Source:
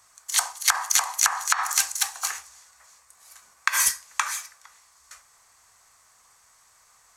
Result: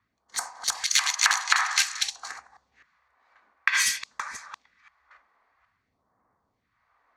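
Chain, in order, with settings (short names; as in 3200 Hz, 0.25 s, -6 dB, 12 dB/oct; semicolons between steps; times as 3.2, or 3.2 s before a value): reverse delay 0.257 s, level -6.5 dB; HPF 49 Hz; low-pass opened by the level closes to 880 Hz, open at -18 dBFS; ten-band EQ 250 Hz +12 dB, 2000 Hz +9 dB, 4000 Hz +9 dB, 16000 Hz -8 dB; in parallel at -6.5 dB: soft clip -12.5 dBFS, distortion -8 dB; on the sum: phaser stages 2, 0.52 Hz, lowest notch 110–3000 Hz; gain -8 dB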